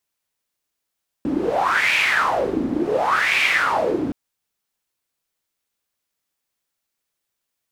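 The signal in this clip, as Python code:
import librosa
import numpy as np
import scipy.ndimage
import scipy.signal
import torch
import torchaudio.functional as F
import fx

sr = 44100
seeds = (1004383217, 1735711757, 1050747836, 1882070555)

y = fx.wind(sr, seeds[0], length_s=2.87, low_hz=270.0, high_hz=2400.0, q=6.4, gusts=2, swing_db=5)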